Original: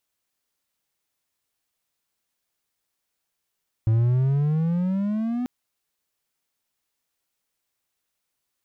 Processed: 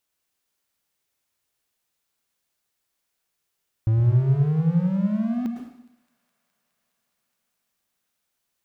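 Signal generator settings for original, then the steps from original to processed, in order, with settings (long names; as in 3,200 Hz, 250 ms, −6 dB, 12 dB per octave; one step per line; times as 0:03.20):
pitch glide with a swell triangle, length 1.59 s, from 109 Hz, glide +14.5 semitones, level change −7.5 dB, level −14 dB
delay with a high-pass on its return 208 ms, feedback 82%, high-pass 1,700 Hz, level −23.5 dB
dense smooth reverb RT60 0.75 s, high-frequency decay 1×, pre-delay 95 ms, DRR 3 dB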